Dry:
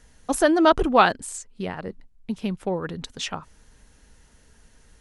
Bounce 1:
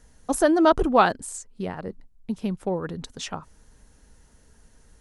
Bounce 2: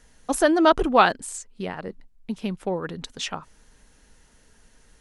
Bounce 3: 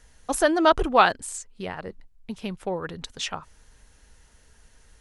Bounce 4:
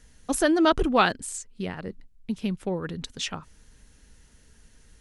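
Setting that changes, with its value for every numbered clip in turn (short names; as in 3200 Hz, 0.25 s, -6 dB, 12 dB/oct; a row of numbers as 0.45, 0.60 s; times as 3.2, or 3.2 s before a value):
bell, frequency: 2700, 76, 220, 810 Hz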